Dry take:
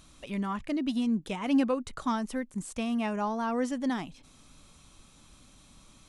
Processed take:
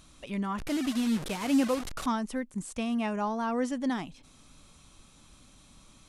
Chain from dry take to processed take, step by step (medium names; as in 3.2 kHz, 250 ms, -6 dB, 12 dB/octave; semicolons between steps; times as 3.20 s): 0.58–2.06 s: one-bit delta coder 64 kbps, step -31.5 dBFS